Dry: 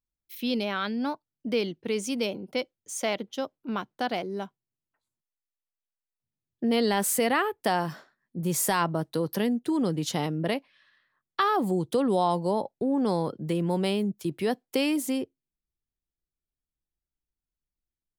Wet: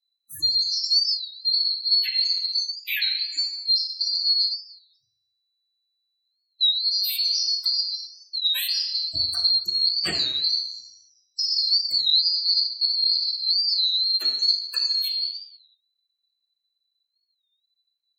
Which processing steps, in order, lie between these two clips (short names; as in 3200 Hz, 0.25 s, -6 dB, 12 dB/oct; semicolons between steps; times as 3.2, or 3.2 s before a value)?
band-swap scrambler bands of 4000 Hz; 14.75–15.18 dispersion lows, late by 45 ms, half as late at 2300 Hz; compressor 12:1, threshold -32 dBFS, peak gain reduction 13 dB; spectral gate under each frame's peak -10 dB strong; bell 12000 Hz +11 dB 1.9 oct; reverb RT60 0.80 s, pre-delay 3 ms, DRR -7.5 dB; record warp 33 1/3 rpm, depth 160 cents; gain -2.5 dB